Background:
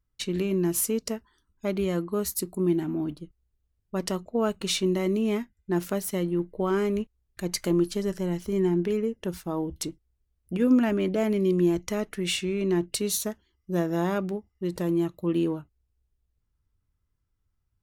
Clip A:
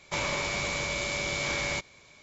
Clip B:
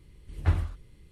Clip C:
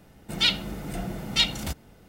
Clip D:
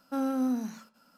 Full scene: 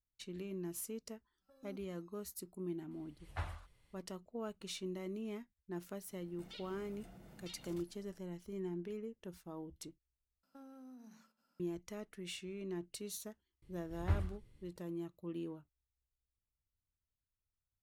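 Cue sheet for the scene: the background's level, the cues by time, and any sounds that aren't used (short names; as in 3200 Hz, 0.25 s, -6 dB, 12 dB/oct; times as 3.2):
background -17.5 dB
1.37 add D -11 dB, fades 0.10 s + stepped resonator 7.7 Hz 190–1300 Hz
2.91 add B -7.5 dB + resonant low shelf 500 Hz -10.5 dB, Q 1.5
6.1 add C -15.5 dB + compressor 2.5:1, threshold -41 dBFS
10.43 replace with D -17 dB + compressor 10:1, threshold -35 dBFS
13.62 add B -9.5 dB
not used: A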